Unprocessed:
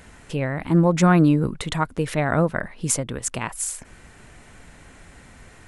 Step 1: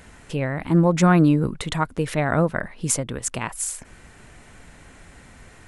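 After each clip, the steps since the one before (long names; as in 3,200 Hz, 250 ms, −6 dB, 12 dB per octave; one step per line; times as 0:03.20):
no processing that can be heard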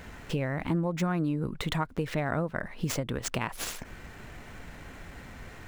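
running median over 5 samples
downward compressor 5 to 1, threshold −29 dBFS, peak gain reduction 16 dB
level +2 dB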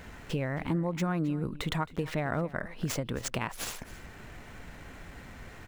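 single-tap delay 268 ms −19 dB
level −1.5 dB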